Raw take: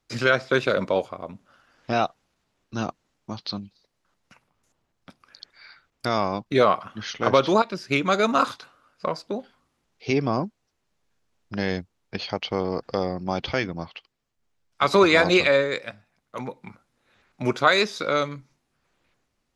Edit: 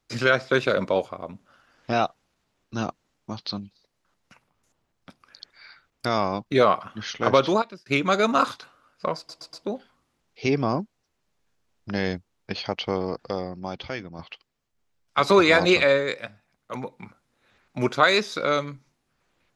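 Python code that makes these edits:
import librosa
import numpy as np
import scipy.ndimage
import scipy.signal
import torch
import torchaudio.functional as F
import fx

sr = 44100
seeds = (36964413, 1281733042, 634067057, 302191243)

y = fx.edit(x, sr, fx.fade_out_span(start_s=7.46, length_s=0.4),
    fx.stutter(start_s=9.17, slice_s=0.12, count=4),
    fx.fade_out_to(start_s=12.54, length_s=1.29, curve='qua', floor_db=-8.0), tone=tone)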